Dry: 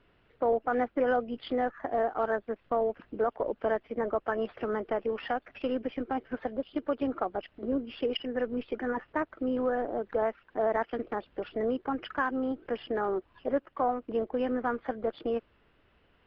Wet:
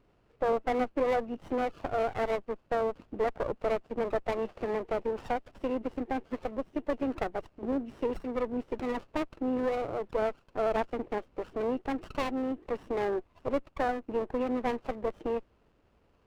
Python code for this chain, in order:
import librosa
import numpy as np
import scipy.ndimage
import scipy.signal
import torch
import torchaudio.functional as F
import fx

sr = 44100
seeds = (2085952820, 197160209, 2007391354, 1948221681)

y = fx.freq_compress(x, sr, knee_hz=2500.0, ratio=1.5)
y = fx.running_max(y, sr, window=17)